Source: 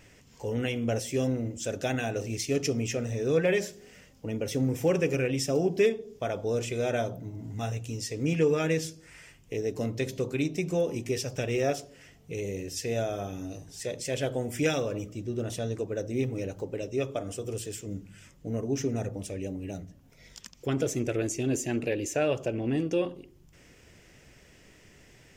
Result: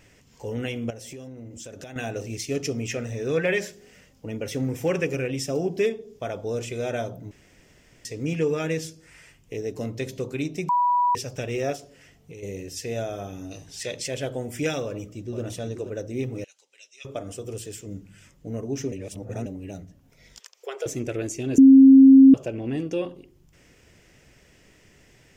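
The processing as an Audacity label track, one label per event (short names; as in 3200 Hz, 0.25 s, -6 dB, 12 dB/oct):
0.900000	1.960000	compressor 16:1, threshold -36 dBFS
2.810000	5.050000	dynamic EQ 1900 Hz, up to +6 dB, over -44 dBFS, Q 0.91
7.310000	8.050000	room tone
10.690000	11.150000	bleep 978 Hz -17.5 dBFS
11.760000	12.430000	compressor, threshold -38 dBFS
13.510000	14.080000	bell 3100 Hz +9 dB 2.3 oct
14.840000	15.420000	echo throw 0.48 s, feedback 35%, level -8 dB
16.440000	17.050000	Butterworth band-pass 5200 Hz, Q 0.77
18.920000	19.460000	reverse
20.390000	20.860000	elliptic high-pass 410 Hz
21.580000	22.340000	bleep 268 Hz -7 dBFS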